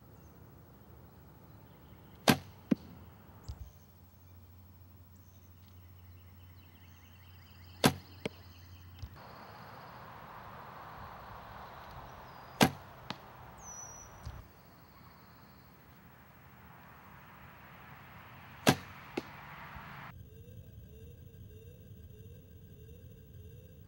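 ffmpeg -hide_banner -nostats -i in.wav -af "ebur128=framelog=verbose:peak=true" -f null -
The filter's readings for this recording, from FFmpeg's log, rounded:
Integrated loudness:
  I:         -37.5 LUFS
  Threshold: -51.4 LUFS
Loudness range:
  LRA:        17.3 LU
  Threshold: -61.1 LUFS
  LRA low:   -55.0 LUFS
  LRA high:  -37.8 LUFS
True peak:
  Peak:       -7.8 dBFS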